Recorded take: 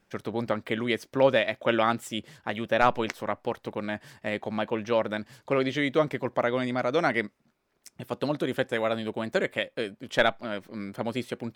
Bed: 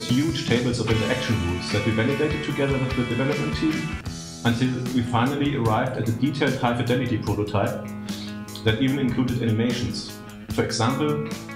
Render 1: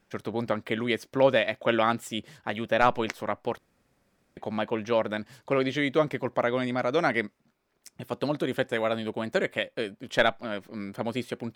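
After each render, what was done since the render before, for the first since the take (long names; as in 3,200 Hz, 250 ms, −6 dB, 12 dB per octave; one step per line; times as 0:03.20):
0:03.58–0:04.37: fill with room tone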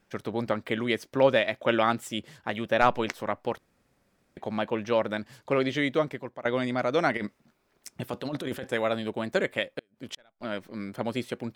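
0:05.86–0:06.45: fade out, to −19 dB
0:07.17–0:08.71: compressor whose output falls as the input rises −32 dBFS
0:09.78–0:10.41: gate with flip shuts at −21 dBFS, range −38 dB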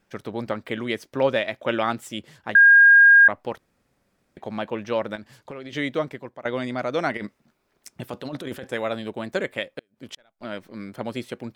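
0:02.55–0:03.28: beep over 1,620 Hz −8.5 dBFS
0:05.15–0:05.73: downward compressor 8 to 1, threshold −33 dBFS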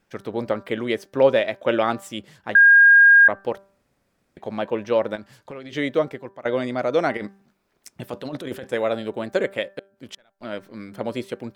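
hum removal 196.2 Hz, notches 9
dynamic equaliser 480 Hz, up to +6 dB, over −36 dBFS, Q 1.1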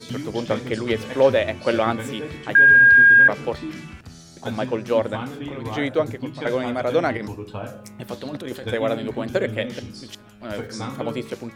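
mix in bed −9.5 dB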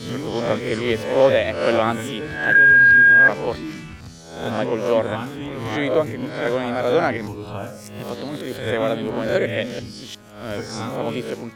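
peak hold with a rise ahead of every peak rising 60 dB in 0.62 s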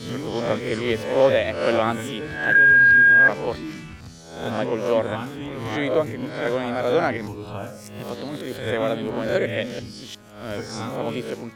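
level −2 dB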